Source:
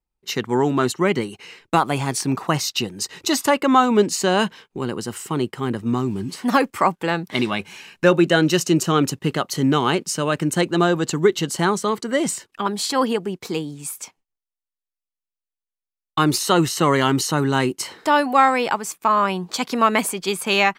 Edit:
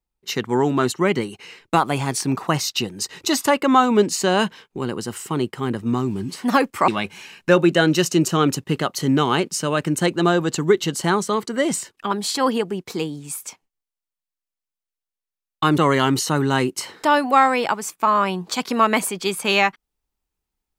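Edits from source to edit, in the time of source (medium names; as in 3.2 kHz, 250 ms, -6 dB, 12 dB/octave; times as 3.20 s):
6.88–7.43 s: delete
16.33–16.80 s: delete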